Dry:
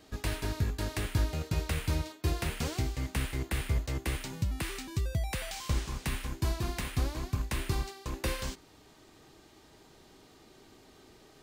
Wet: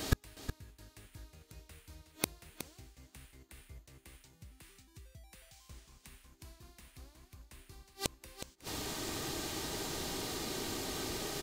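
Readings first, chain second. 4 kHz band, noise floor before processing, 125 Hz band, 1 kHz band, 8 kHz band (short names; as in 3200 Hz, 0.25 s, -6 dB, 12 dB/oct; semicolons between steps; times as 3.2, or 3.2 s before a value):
-2.0 dB, -58 dBFS, -13.5 dB, -5.5 dB, -0.5 dB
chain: high shelf 4300 Hz +8.5 dB; flipped gate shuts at -29 dBFS, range -40 dB; on a send: echo 0.367 s -10.5 dB; on the sum: gain +16 dB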